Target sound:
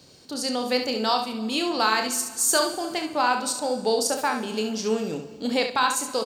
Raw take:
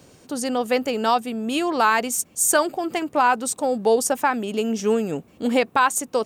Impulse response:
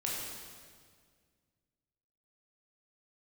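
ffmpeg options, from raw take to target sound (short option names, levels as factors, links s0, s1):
-filter_complex "[0:a]equalizer=f=4400:w=2:g=14,aecho=1:1:32|69:0.398|0.299,asplit=2[s0][s1];[1:a]atrim=start_sample=2205,adelay=69[s2];[s1][s2]afir=irnorm=-1:irlink=0,volume=0.141[s3];[s0][s3]amix=inputs=2:normalize=0,volume=0.531"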